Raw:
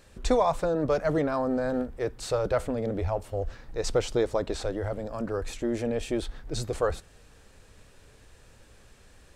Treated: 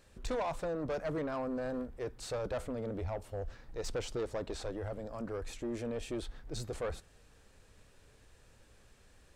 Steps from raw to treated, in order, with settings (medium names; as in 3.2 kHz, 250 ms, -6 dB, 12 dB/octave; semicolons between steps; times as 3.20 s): saturation -23 dBFS, distortion -12 dB; trim -7 dB